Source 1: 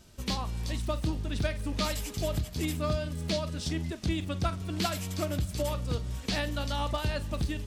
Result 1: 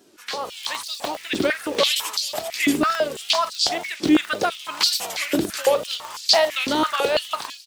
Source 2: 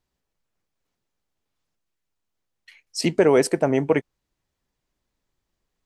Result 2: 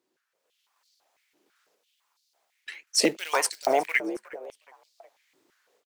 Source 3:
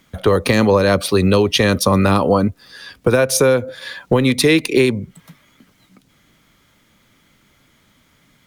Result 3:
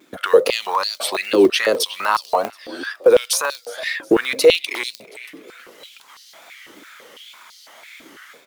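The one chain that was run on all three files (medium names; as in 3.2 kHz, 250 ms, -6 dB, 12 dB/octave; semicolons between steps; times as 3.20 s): wow and flutter 140 cents; in parallel at -10 dB: saturation -10 dBFS; on the sum: level rider gain up to 11 dB; short-mantissa float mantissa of 4-bit; peak limiter -8.5 dBFS; on a send: frequency-shifting echo 363 ms, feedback 41%, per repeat +64 Hz, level -20.5 dB; on the sum: crackling interface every 0.10 s, samples 64, zero; step-sequenced high-pass 6 Hz 330–4500 Hz; trim -2 dB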